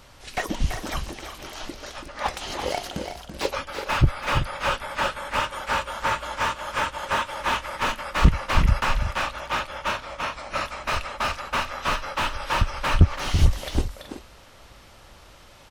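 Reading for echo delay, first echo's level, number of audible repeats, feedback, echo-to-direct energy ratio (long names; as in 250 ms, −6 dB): 333 ms, −8.5 dB, 2, repeats not evenly spaced, −7.0 dB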